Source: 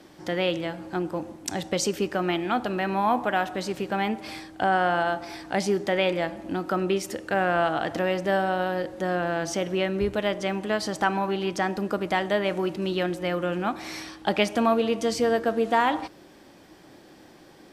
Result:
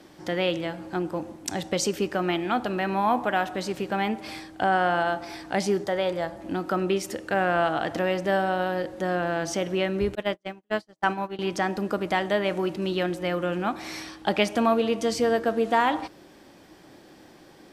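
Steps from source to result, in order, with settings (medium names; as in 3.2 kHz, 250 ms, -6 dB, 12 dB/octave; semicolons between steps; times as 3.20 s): 5.84–6.41 s: fifteen-band graphic EQ 100 Hz +5 dB, 250 Hz -12 dB, 2.5 kHz -11 dB; 10.15–11.39 s: gate -24 dBFS, range -48 dB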